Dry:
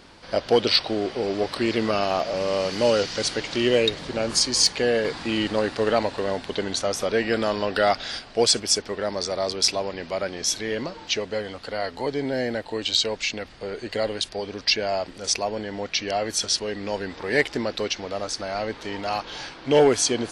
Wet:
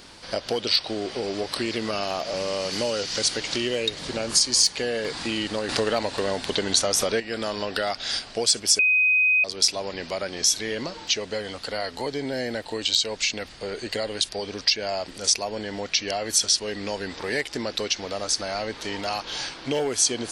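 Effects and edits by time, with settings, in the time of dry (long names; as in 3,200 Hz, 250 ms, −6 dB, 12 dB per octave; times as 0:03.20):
0:05.69–0:07.20: clip gain +10 dB
0:08.79–0:09.44: beep over 2,510 Hz −8.5 dBFS
whole clip: downward compressor 3 to 1, threshold −26 dBFS; high-shelf EQ 3,900 Hz +11.5 dB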